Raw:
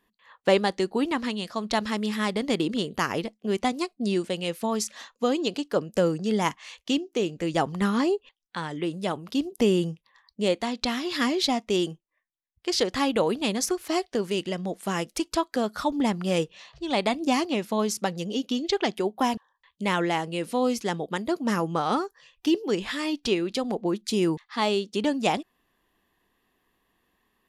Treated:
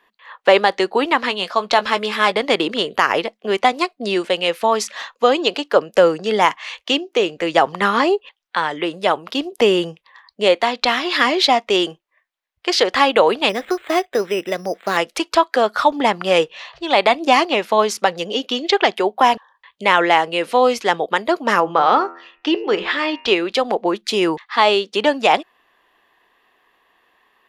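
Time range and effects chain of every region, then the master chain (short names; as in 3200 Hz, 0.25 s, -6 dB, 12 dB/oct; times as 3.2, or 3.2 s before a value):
1.29–2.32 notch 1900 Hz, Q 13 + doubler 16 ms -11.5 dB
13.49–14.97 bell 940 Hz -6.5 dB 0.63 oct + careless resampling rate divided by 8×, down filtered, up hold
21.6–23.28 air absorption 120 m + de-hum 85.29 Hz, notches 34
whole clip: three-band isolator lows -19 dB, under 440 Hz, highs -13 dB, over 3900 Hz; maximiser +15.5 dB; gain -1 dB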